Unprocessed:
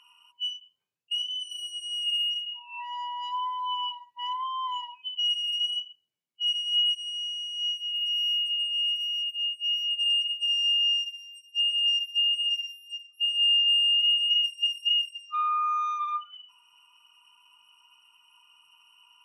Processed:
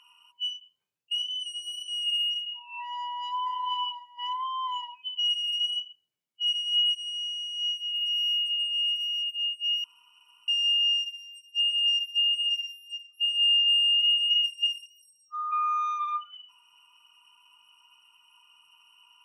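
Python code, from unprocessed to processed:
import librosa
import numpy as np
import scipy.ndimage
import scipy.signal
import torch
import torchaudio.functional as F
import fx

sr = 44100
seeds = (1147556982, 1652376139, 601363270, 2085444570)

y = fx.echo_throw(x, sr, start_s=2.98, length_s=0.4, ms=480, feedback_pct=30, wet_db=-7.0)
y = fx.cheby1_bandstop(y, sr, low_hz=950.0, high_hz=6200.0, order=2, at=(14.84, 15.51), fade=0.02)
y = fx.edit(y, sr, fx.reverse_span(start_s=1.46, length_s=0.42),
    fx.room_tone_fill(start_s=9.84, length_s=0.64), tone=tone)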